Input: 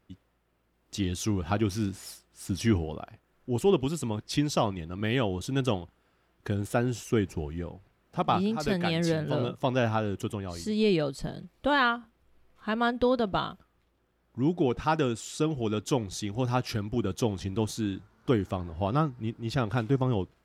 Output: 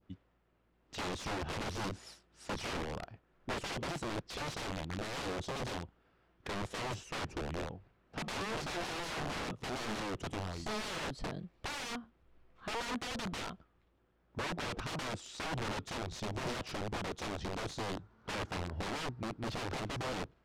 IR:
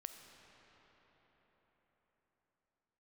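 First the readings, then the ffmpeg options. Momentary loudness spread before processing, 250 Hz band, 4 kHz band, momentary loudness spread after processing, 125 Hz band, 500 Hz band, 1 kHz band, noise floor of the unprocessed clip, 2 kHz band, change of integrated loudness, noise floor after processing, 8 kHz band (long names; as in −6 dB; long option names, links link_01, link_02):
11 LU, −14.0 dB, −4.5 dB, 7 LU, −13.0 dB, −12.5 dB, −8.5 dB, −71 dBFS, −5.0 dB, −10.5 dB, −73 dBFS, −5.5 dB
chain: -af "aeval=exprs='(mod(29.9*val(0)+1,2)-1)/29.9':channel_layout=same,adynamicsmooth=sensitivity=1:basefreq=4700,adynamicequalizer=threshold=0.00398:dfrequency=1900:dqfactor=0.73:tfrequency=1900:tqfactor=0.73:attack=5:release=100:ratio=0.375:range=1.5:mode=cutabove:tftype=bell,volume=-1.5dB"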